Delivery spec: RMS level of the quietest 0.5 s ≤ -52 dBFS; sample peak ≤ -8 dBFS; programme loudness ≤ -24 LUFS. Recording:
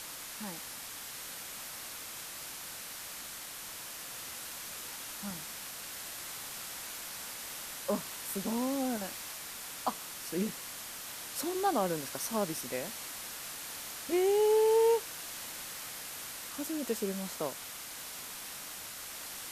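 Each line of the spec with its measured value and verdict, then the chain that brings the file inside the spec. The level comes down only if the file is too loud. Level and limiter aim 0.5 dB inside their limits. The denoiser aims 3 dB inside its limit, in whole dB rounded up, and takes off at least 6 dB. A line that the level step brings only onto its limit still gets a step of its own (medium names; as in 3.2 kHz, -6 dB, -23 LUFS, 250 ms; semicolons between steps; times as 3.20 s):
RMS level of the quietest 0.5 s -44 dBFS: fail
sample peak -17.5 dBFS: pass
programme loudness -35.5 LUFS: pass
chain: noise reduction 11 dB, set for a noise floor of -44 dBFS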